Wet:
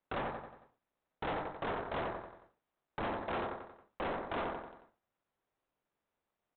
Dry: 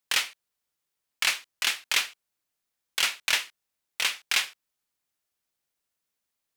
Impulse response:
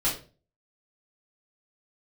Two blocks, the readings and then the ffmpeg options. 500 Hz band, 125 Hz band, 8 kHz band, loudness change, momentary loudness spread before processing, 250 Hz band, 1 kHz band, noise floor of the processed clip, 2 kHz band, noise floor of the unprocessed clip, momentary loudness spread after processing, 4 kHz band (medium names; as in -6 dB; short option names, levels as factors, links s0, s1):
+11.0 dB, no reading, under -40 dB, -13.0 dB, 12 LU, +14.5 dB, +1.5 dB, under -85 dBFS, -15.5 dB, -84 dBFS, 12 LU, -25.0 dB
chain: -filter_complex "[0:a]asplit=2[s0][s1];[s1]acompressor=threshold=0.02:ratio=5,volume=1[s2];[s0][s2]amix=inputs=2:normalize=0,highpass=120,acrossover=split=500|980[s3][s4][s5];[s5]acontrast=29[s6];[s3][s4][s6]amix=inputs=3:normalize=0,aemphasis=mode=production:type=50fm,alimiter=limit=0.841:level=0:latency=1:release=125,lowpass=f=2600:t=q:w=0.5098,lowpass=f=2600:t=q:w=0.6013,lowpass=f=2600:t=q:w=0.9,lowpass=f=2600:t=q:w=2.563,afreqshift=-3100,tiltshelf=f=1100:g=6,aeval=exprs='0.316*(abs(mod(val(0)/0.316+3,4)-2)-1)':c=same,bandreject=f=60:t=h:w=6,bandreject=f=120:t=h:w=6,bandreject=f=180:t=h:w=6,bandreject=f=240:t=h:w=6,bandreject=f=300:t=h:w=6,bandreject=f=360:t=h:w=6,bandreject=f=420:t=h:w=6,aecho=1:1:91|182|273|364|455:0.398|0.187|0.0879|0.0413|0.0194,volume=20,asoftclip=hard,volume=0.0501,volume=0.422" -ar 8000 -c:a adpcm_ima_wav